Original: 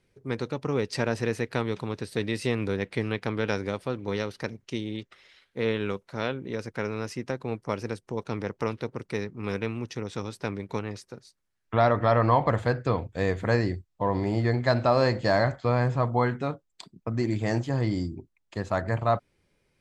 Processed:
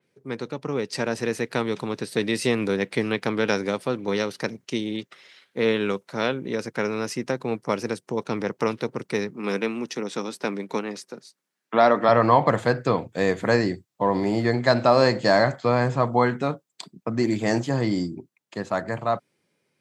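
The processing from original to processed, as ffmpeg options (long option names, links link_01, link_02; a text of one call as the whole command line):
ffmpeg -i in.wav -filter_complex "[0:a]asettb=1/sr,asplit=3[link_01][link_02][link_03];[link_01]atrim=end=9.344[link_04];[link_02]atrim=start=9.34:end=12.09,asetpts=PTS-STARTPTS,afade=type=in:duration=0.004:curve=qsin,afade=type=out:start_time=2.746:duration=0.004:curve=qsin,highpass=frequency=170:width=0.5412,highpass=frequency=170:width=1.3066[link_05];[link_03]atrim=start=12.086[link_06];[link_04][link_05]acrossfade=duration=0.004:curve1=hsin:curve2=qsin[link_07];[link_07][link_06]acrossfade=duration=0.004:curve1=qsin:curve2=hsin,highpass=frequency=140:width=0.5412,highpass=frequency=140:width=1.3066,dynaudnorm=framelen=140:gausssize=21:maxgain=5.5dB,adynamicequalizer=threshold=0.0112:dfrequency=4800:dqfactor=0.7:tfrequency=4800:tqfactor=0.7:attack=5:release=100:ratio=0.375:range=2.5:mode=boostabove:tftype=highshelf" out.wav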